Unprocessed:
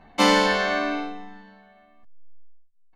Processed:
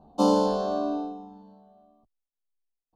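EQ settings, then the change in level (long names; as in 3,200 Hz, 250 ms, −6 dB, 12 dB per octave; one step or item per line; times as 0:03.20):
high-pass filter 60 Hz 6 dB per octave
Butterworth band-reject 2,000 Hz, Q 0.57
high-shelf EQ 2,800 Hz −11 dB
0.0 dB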